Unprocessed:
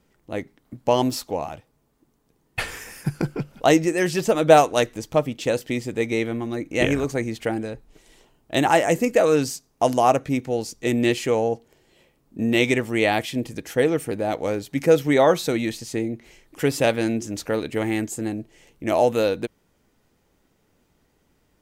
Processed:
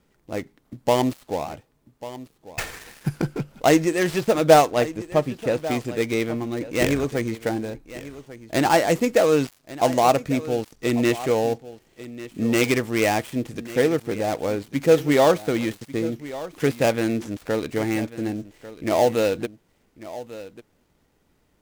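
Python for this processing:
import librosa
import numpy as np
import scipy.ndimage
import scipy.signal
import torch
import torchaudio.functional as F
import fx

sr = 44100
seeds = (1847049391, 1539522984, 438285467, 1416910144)

y = fx.dead_time(x, sr, dead_ms=0.11)
y = fx.high_shelf(y, sr, hz=3900.0, db=-8.5, at=(4.71, 5.63))
y = y + 10.0 ** (-16.0 / 20.0) * np.pad(y, (int(1144 * sr / 1000.0), 0))[:len(y)]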